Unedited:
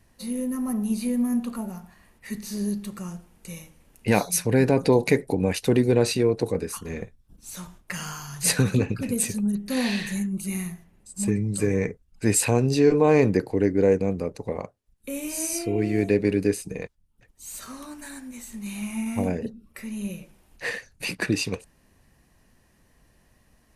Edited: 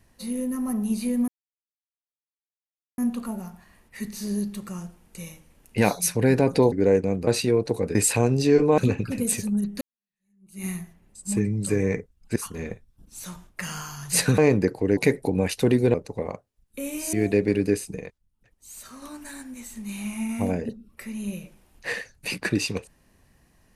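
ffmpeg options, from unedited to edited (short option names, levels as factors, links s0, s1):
-filter_complex "[0:a]asplit=14[s0][s1][s2][s3][s4][s5][s6][s7][s8][s9][s10][s11][s12][s13];[s0]atrim=end=1.28,asetpts=PTS-STARTPTS,afade=t=out:st=1.276:d=0.004:c=hsin,apad=pad_dur=1.7[s14];[s1]atrim=start=1.28:end=5.022,asetpts=PTS-STARTPTS,afade=t=in:d=0.004:c=hsin[s15];[s2]atrim=start=13.688:end=14.242[s16];[s3]atrim=start=5.988:end=6.672[s17];[s4]atrim=start=12.268:end=13.102[s18];[s5]atrim=start=8.688:end=9.72,asetpts=PTS-STARTPTS,afade=t=out:st=1.028:d=0.004:c=hsin[s19];[s6]atrim=start=9.72:end=12.272,asetpts=PTS-STARTPTS,afade=t=in:d=0.85:c=exp[s20];[s7]atrim=start=6.668:end=8.692[s21];[s8]atrim=start=13.098:end=13.692[s22];[s9]atrim=start=5.018:end=5.992[s23];[s10]atrim=start=14.238:end=15.432[s24];[s11]atrim=start=15.898:end=16.762[s25];[s12]atrim=start=16.758:end=17.792,asetpts=PTS-STARTPTS,volume=0.596[s26];[s13]atrim=start=17.788[s27];[s14][s15]concat=n=2:v=0:a=1[s28];[s28][s16]acrossfade=d=0.004:c1=hsin:c2=hsin[s29];[s29][s17]acrossfade=d=0.004:c1=hsin:c2=hsin[s30];[s30][s18]acrossfade=d=0.004:c1=hsin:c2=hsin[s31];[s19][s20]concat=n=2:v=0:a=1[s32];[s31][s32]acrossfade=d=0.004:c1=hsin:c2=hsin[s33];[s33][s21]acrossfade=d=0.004:c1=hsin:c2=hsin[s34];[s34][s22]acrossfade=d=0.004:c1=hsin:c2=hsin[s35];[s35][s23]acrossfade=d=0.004:c1=hsin:c2=hsin[s36];[s36][s24]acrossfade=d=0.004:c1=hsin:c2=hsin[s37];[s37][s25]acrossfade=d=0.004:c1=hsin:c2=hsin[s38];[s38][s26]acrossfade=d=0.004:c1=hsin:c2=hsin[s39];[s39][s27]acrossfade=d=0.004:c1=hsin:c2=hsin"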